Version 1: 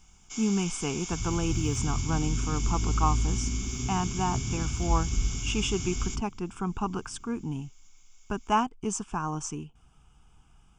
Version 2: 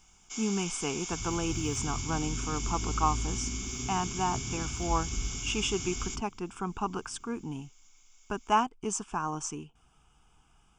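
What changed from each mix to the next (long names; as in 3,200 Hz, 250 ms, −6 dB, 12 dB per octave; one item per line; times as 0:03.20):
master: add bass and treble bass −7 dB, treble 0 dB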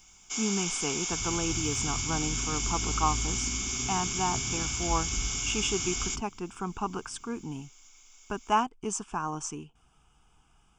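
first sound +6.5 dB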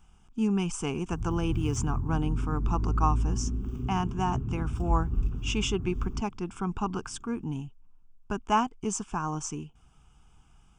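first sound: muted
master: add bass and treble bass +7 dB, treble 0 dB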